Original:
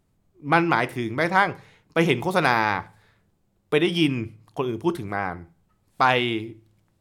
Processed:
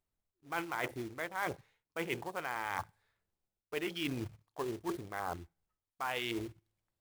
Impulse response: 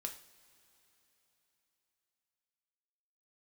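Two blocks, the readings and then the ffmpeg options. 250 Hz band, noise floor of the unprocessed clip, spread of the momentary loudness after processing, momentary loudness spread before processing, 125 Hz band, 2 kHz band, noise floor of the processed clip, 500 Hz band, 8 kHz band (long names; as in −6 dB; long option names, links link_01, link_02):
−16.5 dB, −68 dBFS, 9 LU, 12 LU, −18.0 dB, −15.5 dB, below −85 dBFS, −15.5 dB, −6.0 dB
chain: -af "afwtdn=0.0355,equalizer=frequency=170:width=0.63:gain=-11,areverse,acompressor=threshold=-35dB:ratio=6,areverse,acrusher=bits=3:mode=log:mix=0:aa=0.000001"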